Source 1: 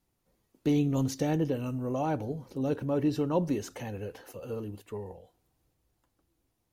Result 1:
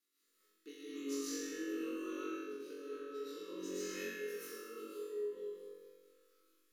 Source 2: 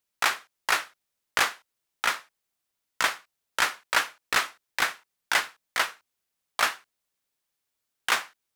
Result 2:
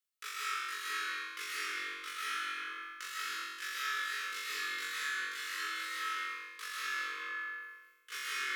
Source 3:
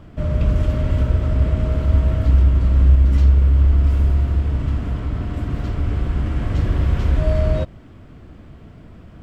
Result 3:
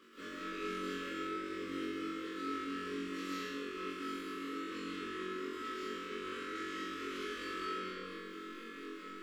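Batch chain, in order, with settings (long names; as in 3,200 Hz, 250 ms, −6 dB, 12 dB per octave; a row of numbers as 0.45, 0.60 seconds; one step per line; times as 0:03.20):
dynamic equaliser 890 Hz, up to −4 dB, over −42 dBFS, Q 2.6
Chebyshev band-stop filter 510–1,100 Hz, order 3
amplitude tremolo 4.4 Hz, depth 77%
inverse Chebyshev high-pass filter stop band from 150 Hz, stop band 40 dB
tuned comb filter 430 Hz, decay 0.18 s, harmonics all, mix 80%
comb and all-pass reverb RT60 1.5 s, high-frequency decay 0.6×, pre-delay 85 ms, DRR −9.5 dB
reversed playback
downward compressor 6 to 1, threshold −48 dBFS
reversed playback
parametric band 580 Hz −8.5 dB 1.4 octaves
on a send: flutter between parallel walls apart 3.7 metres, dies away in 1.2 s
on the sum: level +6.5 dB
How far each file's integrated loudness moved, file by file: −12.0, −10.0, −22.5 LU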